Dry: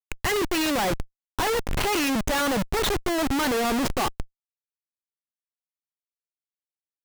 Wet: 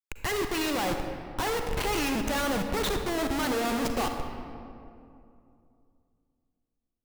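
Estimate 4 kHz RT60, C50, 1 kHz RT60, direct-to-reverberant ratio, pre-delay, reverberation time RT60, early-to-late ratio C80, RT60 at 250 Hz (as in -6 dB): 1.4 s, 5.5 dB, 2.4 s, 5.0 dB, 38 ms, 2.6 s, 6.0 dB, 3.1 s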